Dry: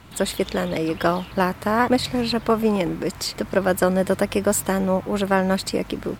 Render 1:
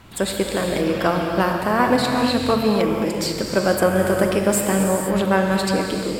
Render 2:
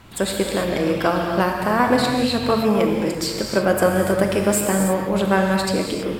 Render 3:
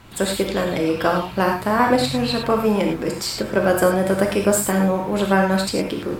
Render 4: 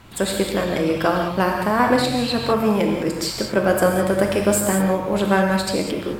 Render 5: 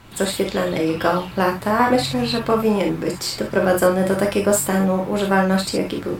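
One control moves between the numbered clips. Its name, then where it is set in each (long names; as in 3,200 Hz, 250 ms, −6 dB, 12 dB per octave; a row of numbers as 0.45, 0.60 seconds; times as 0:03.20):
reverb whose tail is shaped and stops, gate: 520, 350, 130, 230, 90 milliseconds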